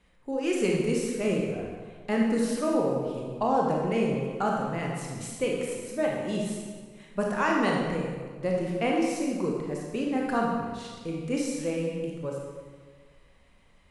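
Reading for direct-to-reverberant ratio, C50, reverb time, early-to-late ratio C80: -2.0 dB, 0.5 dB, 1.6 s, 2.5 dB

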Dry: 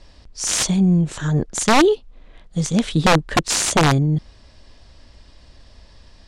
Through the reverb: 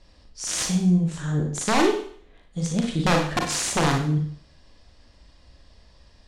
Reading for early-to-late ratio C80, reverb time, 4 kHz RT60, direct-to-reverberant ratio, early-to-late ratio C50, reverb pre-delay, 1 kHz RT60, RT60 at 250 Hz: 9.5 dB, 0.55 s, 0.55 s, 1.5 dB, 5.0 dB, 34 ms, 0.55 s, 0.55 s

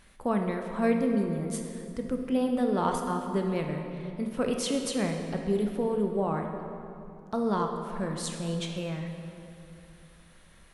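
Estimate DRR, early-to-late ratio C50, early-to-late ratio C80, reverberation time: 3.0 dB, 4.5 dB, 5.5 dB, 2.7 s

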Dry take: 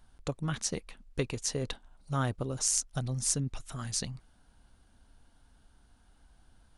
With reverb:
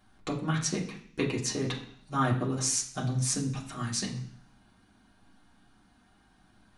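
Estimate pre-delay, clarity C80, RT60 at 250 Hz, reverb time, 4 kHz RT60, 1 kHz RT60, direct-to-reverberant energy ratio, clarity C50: 3 ms, 12.5 dB, 0.70 s, 0.55 s, 0.65 s, 0.55 s, -5.0 dB, 9.0 dB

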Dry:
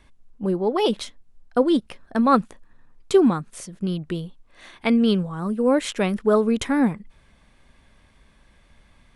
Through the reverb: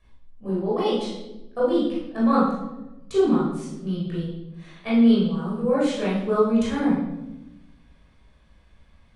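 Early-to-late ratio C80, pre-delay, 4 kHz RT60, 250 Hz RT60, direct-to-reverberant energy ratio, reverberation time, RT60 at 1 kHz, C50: 4.5 dB, 18 ms, 0.70 s, 1.4 s, -8.5 dB, 1.0 s, 0.85 s, 0.5 dB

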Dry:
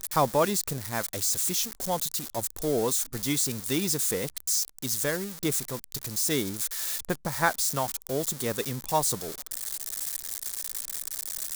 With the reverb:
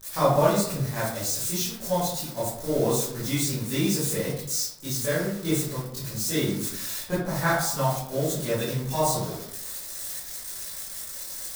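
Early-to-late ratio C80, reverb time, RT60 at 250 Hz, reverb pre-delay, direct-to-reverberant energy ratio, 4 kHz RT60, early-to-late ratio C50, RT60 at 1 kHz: 5.0 dB, 0.75 s, 0.85 s, 16 ms, -11.5 dB, 0.40 s, 1.5 dB, 0.70 s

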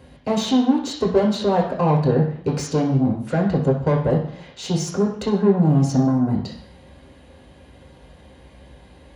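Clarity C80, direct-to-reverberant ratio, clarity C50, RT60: 10.0 dB, -3.0 dB, 6.5 dB, 0.60 s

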